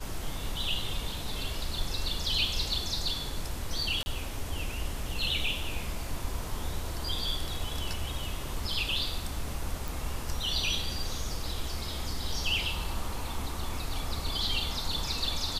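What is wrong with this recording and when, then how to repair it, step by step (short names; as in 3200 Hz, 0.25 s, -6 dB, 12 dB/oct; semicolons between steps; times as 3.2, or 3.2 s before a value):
4.03–4.06 gap 30 ms
9.88 pop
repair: de-click; interpolate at 4.03, 30 ms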